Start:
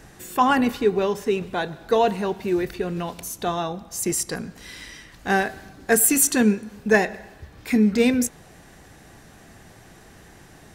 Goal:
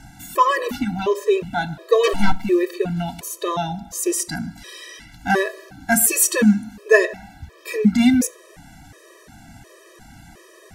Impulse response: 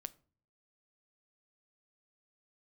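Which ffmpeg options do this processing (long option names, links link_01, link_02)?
-filter_complex "[0:a]asplit=3[link_01][link_02][link_03];[link_01]afade=type=out:start_time=2.03:duration=0.02[link_04];[link_02]aeval=exprs='0.376*(cos(1*acos(clip(val(0)/0.376,-1,1)))-cos(1*PI/2))+0.075*(cos(4*acos(clip(val(0)/0.376,-1,1)))-cos(4*PI/2))+0.0211*(cos(7*acos(clip(val(0)/0.376,-1,1)))-cos(7*PI/2))+0.0944*(cos(8*acos(clip(val(0)/0.376,-1,1)))-cos(8*PI/2))':channel_layout=same,afade=type=in:start_time=2.03:duration=0.02,afade=type=out:start_time=2.43:duration=0.02[link_05];[link_03]afade=type=in:start_time=2.43:duration=0.02[link_06];[link_04][link_05][link_06]amix=inputs=3:normalize=0,asplit=2[link_07][link_08];[1:a]atrim=start_sample=2205,asetrate=38808,aresample=44100[link_09];[link_08][link_09]afir=irnorm=-1:irlink=0,volume=8.5dB[link_10];[link_07][link_10]amix=inputs=2:normalize=0,afftfilt=real='re*gt(sin(2*PI*1.4*pts/sr)*(1-2*mod(floor(b*sr/1024/330),2)),0)':imag='im*gt(sin(2*PI*1.4*pts/sr)*(1-2*mod(floor(b*sr/1024/330),2)),0)':win_size=1024:overlap=0.75,volume=-3.5dB"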